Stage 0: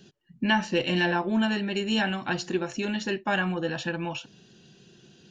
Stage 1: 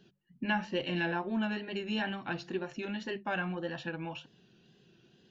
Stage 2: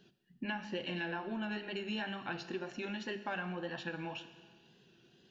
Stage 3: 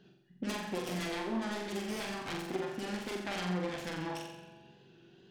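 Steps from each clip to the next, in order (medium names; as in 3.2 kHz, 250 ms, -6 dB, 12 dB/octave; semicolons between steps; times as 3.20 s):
low-pass 3.9 kHz 12 dB/octave; hum notches 50/100/150/200 Hz; wow and flutter 61 cents; trim -7.5 dB
bass shelf 360 Hz -4 dB; compression, threshold -35 dBFS, peak gain reduction 9 dB; Schroeder reverb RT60 1.6 s, combs from 26 ms, DRR 11 dB
self-modulated delay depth 0.52 ms; treble shelf 3.6 kHz -9.5 dB; flutter echo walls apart 7.6 m, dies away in 0.73 s; trim +3 dB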